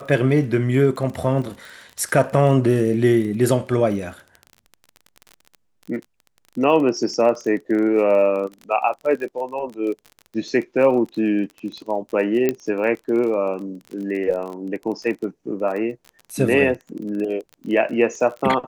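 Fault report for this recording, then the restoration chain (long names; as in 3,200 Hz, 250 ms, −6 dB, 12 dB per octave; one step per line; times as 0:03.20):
surface crackle 22 per second −29 dBFS
0:12.49: click −7 dBFS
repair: click removal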